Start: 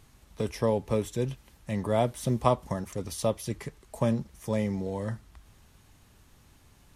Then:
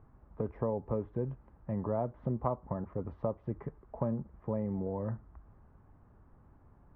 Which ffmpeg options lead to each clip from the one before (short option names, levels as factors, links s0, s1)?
-af "lowpass=f=1300:w=0.5412,lowpass=f=1300:w=1.3066,acompressor=threshold=0.0316:ratio=2.5,volume=0.891"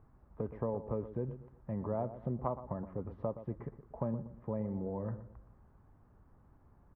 -filter_complex "[0:a]asplit=2[s0][s1];[s1]adelay=120,lowpass=f=1400:p=1,volume=0.251,asplit=2[s2][s3];[s3]adelay=120,lowpass=f=1400:p=1,volume=0.36,asplit=2[s4][s5];[s5]adelay=120,lowpass=f=1400:p=1,volume=0.36,asplit=2[s6][s7];[s7]adelay=120,lowpass=f=1400:p=1,volume=0.36[s8];[s0][s2][s4][s6][s8]amix=inputs=5:normalize=0,volume=0.708"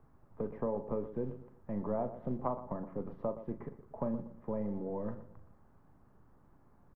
-filter_complex "[0:a]asplit=2[s0][s1];[s1]adelay=39,volume=0.282[s2];[s0][s2]amix=inputs=2:normalize=0,acrossover=split=130|840[s3][s4][s5];[s3]aeval=exprs='abs(val(0))':c=same[s6];[s6][s4][s5]amix=inputs=3:normalize=0,volume=1.12"